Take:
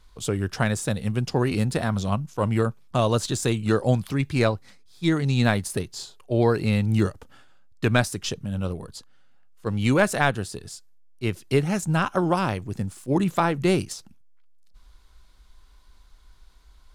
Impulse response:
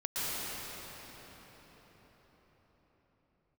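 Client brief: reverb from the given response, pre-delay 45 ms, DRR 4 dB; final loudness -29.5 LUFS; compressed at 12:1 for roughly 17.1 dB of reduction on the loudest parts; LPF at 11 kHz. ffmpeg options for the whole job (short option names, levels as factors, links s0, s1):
-filter_complex "[0:a]lowpass=11000,acompressor=threshold=0.0224:ratio=12,asplit=2[s0][s1];[1:a]atrim=start_sample=2205,adelay=45[s2];[s1][s2]afir=irnorm=-1:irlink=0,volume=0.251[s3];[s0][s3]amix=inputs=2:normalize=0,volume=2.37"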